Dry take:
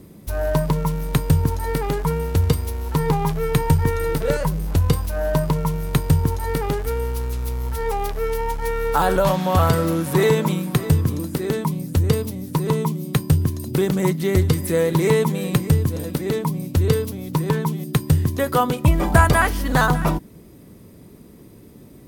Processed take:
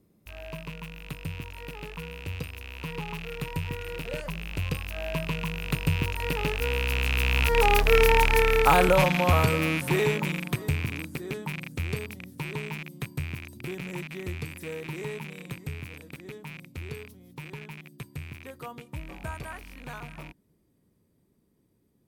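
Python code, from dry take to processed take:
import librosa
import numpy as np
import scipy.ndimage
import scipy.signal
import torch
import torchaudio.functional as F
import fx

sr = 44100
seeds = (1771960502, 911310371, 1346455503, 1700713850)

y = fx.rattle_buzz(x, sr, strikes_db=-25.0, level_db=-11.0)
y = fx.doppler_pass(y, sr, speed_mps=13, closest_m=6.4, pass_at_s=8.0)
y = y * 10.0 ** (4.0 / 20.0)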